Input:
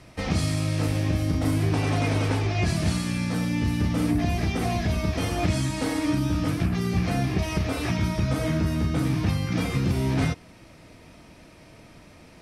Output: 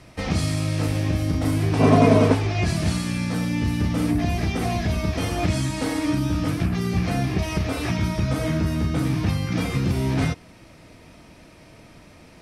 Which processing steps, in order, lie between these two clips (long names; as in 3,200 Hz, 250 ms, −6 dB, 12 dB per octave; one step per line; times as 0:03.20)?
0:01.79–0:02.33: hollow resonant body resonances 230/440/630/1,000 Hz, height 18 dB → 14 dB
level +1.5 dB